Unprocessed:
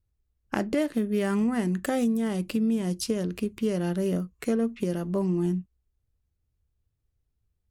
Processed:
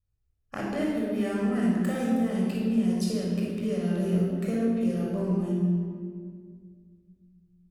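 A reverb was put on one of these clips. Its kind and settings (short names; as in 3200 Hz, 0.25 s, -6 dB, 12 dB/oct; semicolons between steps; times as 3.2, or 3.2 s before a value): shoebox room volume 3300 m³, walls mixed, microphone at 6.2 m; gain -10.5 dB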